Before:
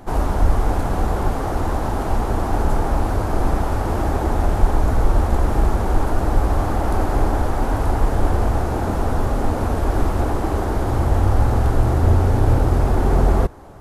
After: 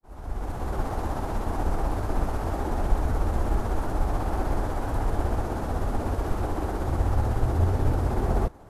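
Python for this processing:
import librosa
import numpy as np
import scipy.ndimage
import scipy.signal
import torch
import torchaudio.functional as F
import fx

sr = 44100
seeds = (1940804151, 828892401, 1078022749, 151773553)

y = fx.fade_in_head(x, sr, length_s=1.34)
y = fx.stretch_grains(y, sr, factor=0.63, grain_ms=124.0)
y = y * 10.0 ** (-6.5 / 20.0)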